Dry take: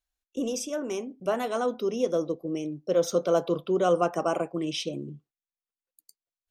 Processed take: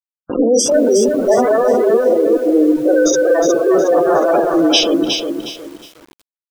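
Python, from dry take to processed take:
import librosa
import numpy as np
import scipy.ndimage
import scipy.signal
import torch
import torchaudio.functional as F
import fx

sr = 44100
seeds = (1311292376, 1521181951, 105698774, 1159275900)

y = fx.spec_steps(x, sr, hold_ms=100)
y = scipy.signal.sosfilt(scipy.signal.bessel(8, 370.0, 'highpass', norm='mag', fs=sr, output='sos'), y)
y = fx.echo_heads(y, sr, ms=72, heads='first and third', feedback_pct=49, wet_db=-17)
y = fx.level_steps(y, sr, step_db=20, at=(2.13, 2.67))
y = fx.fuzz(y, sr, gain_db=41.0, gate_db=-48.0)
y = y + 10.0 ** (-16.0 / 20.0) * np.pad(y, (int(121 * sr / 1000.0), 0))[:len(y)]
y = fx.spec_gate(y, sr, threshold_db=-15, keep='strong')
y = fx.rotary(y, sr, hz=5.0)
y = fx.rider(y, sr, range_db=4, speed_s=0.5)
y = fx.high_shelf(y, sr, hz=2900.0, db=3.0)
y = fx.echo_crushed(y, sr, ms=363, feedback_pct=35, bits=7, wet_db=-5.5)
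y = y * 10.0 ** (5.0 / 20.0)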